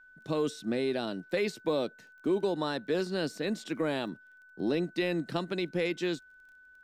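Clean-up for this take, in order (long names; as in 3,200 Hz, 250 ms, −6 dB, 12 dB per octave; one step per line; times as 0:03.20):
click removal
notch filter 1,500 Hz, Q 30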